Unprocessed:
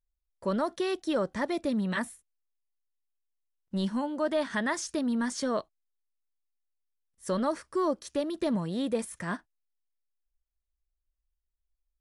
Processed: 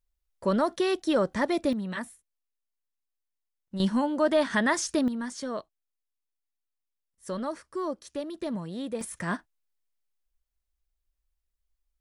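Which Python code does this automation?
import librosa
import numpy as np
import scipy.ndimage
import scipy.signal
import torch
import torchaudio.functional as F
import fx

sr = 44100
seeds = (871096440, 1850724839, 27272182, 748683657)

y = fx.gain(x, sr, db=fx.steps((0.0, 4.0), (1.73, -3.5), (3.8, 5.0), (5.08, -4.0), (9.01, 3.0)))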